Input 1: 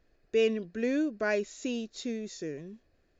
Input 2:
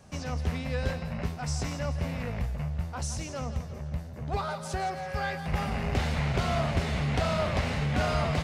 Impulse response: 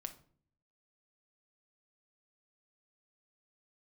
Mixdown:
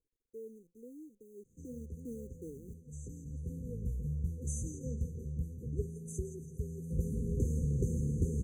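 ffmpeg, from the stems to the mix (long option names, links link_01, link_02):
-filter_complex "[0:a]highshelf=frequency=2500:width_type=q:width=3:gain=-11.5,acrusher=bits=8:dc=4:mix=0:aa=0.000001,volume=-9.5dB,afade=type=in:start_time=1.34:duration=0.72:silence=0.251189,asplit=2[link_01][link_02];[1:a]adelay=1450,volume=-3dB[link_03];[link_02]apad=whole_len=435971[link_04];[link_03][link_04]sidechaincompress=threshold=-59dB:ratio=4:attack=8.8:release=1290[link_05];[link_01][link_05]amix=inputs=2:normalize=0,afftfilt=real='re*(1-between(b*sr/4096,520,6000))':imag='im*(1-between(b*sr/4096,520,6000))':win_size=4096:overlap=0.75"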